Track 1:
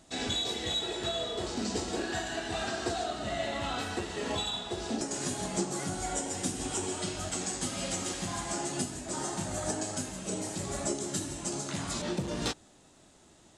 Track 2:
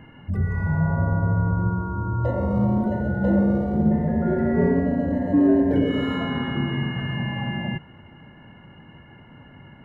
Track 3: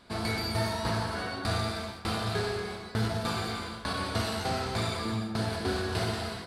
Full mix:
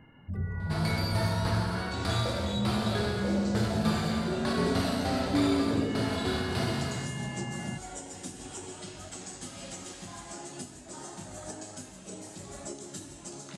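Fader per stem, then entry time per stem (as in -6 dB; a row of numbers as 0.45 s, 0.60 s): -8.0 dB, -9.5 dB, -1.5 dB; 1.80 s, 0.00 s, 0.60 s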